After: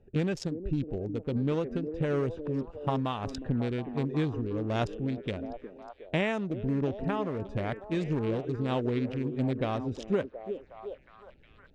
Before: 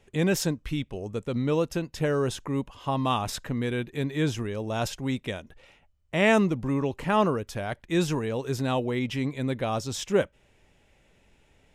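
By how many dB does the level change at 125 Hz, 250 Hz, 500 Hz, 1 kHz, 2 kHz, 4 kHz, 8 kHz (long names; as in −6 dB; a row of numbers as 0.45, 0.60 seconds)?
−2.0 dB, −3.0 dB, −4.0 dB, −6.5 dB, −8.0 dB, −9.0 dB, below −15 dB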